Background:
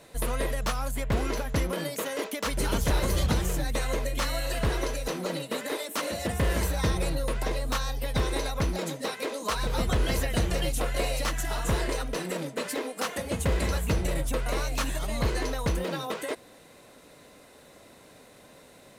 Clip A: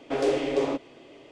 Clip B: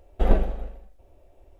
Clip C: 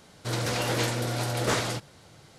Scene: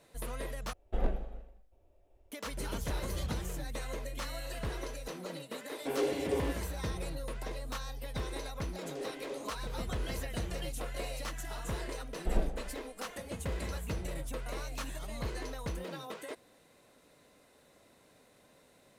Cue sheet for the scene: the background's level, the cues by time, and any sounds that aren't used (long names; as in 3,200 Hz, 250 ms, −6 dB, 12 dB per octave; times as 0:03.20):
background −10.5 dB
0:00.73: overwrite with B −11.5 dB + wave folding −7.5 dBFS
0:05.75: mix in A −7 dB + notch comb filter 630 Hz
0:08.73: mix in A −17.5 dB
0:12.06: mix in B −11.5 dB
not used: C